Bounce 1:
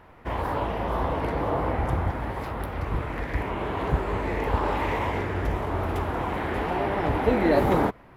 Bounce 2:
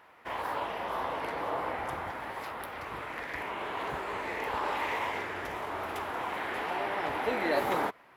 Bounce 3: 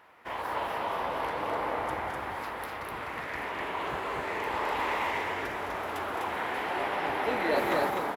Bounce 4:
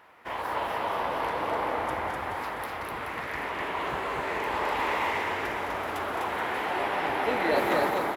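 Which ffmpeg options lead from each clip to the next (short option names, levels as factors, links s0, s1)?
-af "highpass=f=1200:p=1"
-af "aecho=1:1:212.8|250.7:0.355|0.708"
-af "aecho=1:1:426:0.316,volume=1.26"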